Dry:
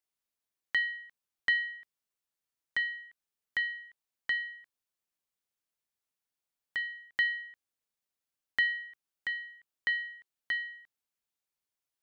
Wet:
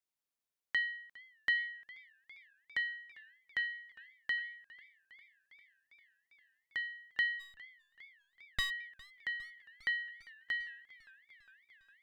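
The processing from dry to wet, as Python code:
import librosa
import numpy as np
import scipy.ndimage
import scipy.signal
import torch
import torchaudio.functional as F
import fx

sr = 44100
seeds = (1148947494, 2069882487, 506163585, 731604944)

y = fx.lower_of_two(x, sr, delay_ms=1.4, at=(7.39, 8.69), fade=0.02)
y = fx.echo_warbled(y, sr, ms=403, feedback_pct=74, rate_hz=2.8, cents=140, wet_db=-22.0)
y = y * 10.0 ** (-4.0 / 20.0)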